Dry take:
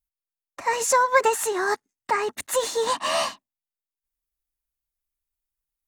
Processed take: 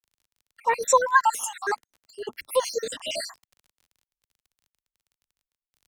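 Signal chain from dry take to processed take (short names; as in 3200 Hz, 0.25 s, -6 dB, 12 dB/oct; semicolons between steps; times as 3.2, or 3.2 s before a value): random spectral dropouts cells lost 67%; crackle 25/s -37 dBFS; three-band expander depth 40%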